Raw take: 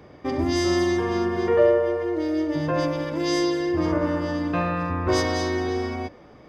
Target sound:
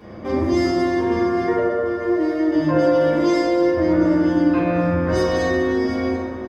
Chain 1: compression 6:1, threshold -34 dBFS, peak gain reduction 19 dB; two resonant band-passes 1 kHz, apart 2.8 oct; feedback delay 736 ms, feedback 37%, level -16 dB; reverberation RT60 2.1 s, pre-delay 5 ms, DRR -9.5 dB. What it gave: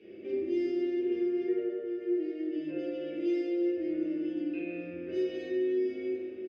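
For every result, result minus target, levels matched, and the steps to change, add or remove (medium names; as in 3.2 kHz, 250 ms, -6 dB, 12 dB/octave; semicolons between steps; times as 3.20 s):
1 kHz band -19.0 dB; compression: peak gain reduction +6 dB
remove: two resonant band-passes 1 kHz, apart 2.8 oct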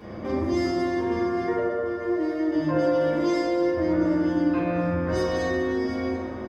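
compression: peak gain reduction +6 dB
change: compression 6:1, threshold -27 dBFS, peak gain reduction 13.5 dB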